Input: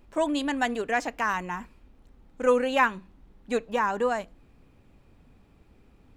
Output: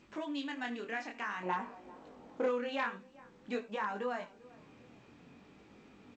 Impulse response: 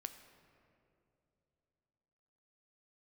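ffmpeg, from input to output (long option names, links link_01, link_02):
-filter_complex "[1:a]atrim=start_sample=2205,atrim=end_sample=3969[link_01];[0:a][link_01]afir=irnorm=-1:irlink=0,acompressor=threshold=-54dB:ratio=2,asplit=2[link_02][link_03];[link_03]adelay=393,lowpass=frequency=920:poles=1,volume=-19.5dB,asplit=2[link_04][link_05];[link_05]adelay=393,lowpass=frequency=920:poles=1,volume=0.42,asplit=2[link_06][link_07];[link_07]adelay=393,lowpass=frequency=920:poles=1,volume=0.42[link_08];[link_02][link_04][link_06][link_08]amix=inputs=4:normalize=0,acontrast=63,asetnsamples=nb_out_samples=441:pad=0,asendcmd='1.43 equalizer g 7.5;2.46 equalizer g -4',equalizer=frequency=610:width_type=o:width=1.7:gain=-9,flanger=delay=19:depth=7.1:speed=0.52,aeval=exprs='clip(val(0),-1,0.0188)':channel_layout=same,highpass=200,lowpass=4500,volume=7dB" -ar 16000 -c:a g722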